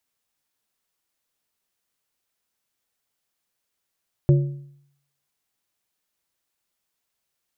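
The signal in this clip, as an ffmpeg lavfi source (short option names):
-f lavfi -i "aevalsrc='0.316*pow(10,-3*t/0.69)*sin(2*PI*141*t)+0.119*pow(10,-3*t/0.524)*sin(2*PI*352.5*t)+0.0447*pow(10,-3*t/0.455)*sin(2*PI*564*t)':d=1.55:s=44100"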